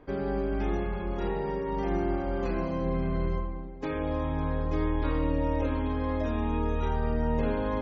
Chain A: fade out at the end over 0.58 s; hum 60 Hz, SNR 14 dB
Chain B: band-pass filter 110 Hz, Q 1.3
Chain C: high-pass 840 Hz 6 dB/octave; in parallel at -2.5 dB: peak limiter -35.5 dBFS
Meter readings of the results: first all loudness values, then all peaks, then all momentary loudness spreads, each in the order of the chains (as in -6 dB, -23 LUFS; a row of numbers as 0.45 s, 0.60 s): -30.5 LUFS, -38.0 LUFS, -35.5 LUFS; -16.5 dBFS, -23.5 dBFS, -24.0 dBFS; 4 LU, 6 LU, 3 LU